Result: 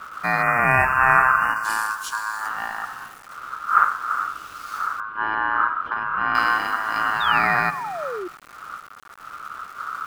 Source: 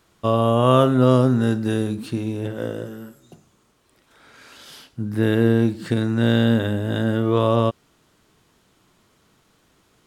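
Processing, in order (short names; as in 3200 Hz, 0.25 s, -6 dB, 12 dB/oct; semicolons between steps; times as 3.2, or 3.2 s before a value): wind noise 120 Hz -25 dBFS; 1.56–2.49 resonant high shelf 4000 Hz +11 dB, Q 3; spring tank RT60 1.8 s, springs 42/55 ms, chirp 65 ms, DRR 11.5 dB; bit-crush 7-bit; 0.42–1.64 spectral delete 1600–5700 Hz; ring modulator 1300 Hz; 5–6.35 air absorption 490 m; 7.2–8.28 painted sound fall 340–3800 Hz -30 dBFS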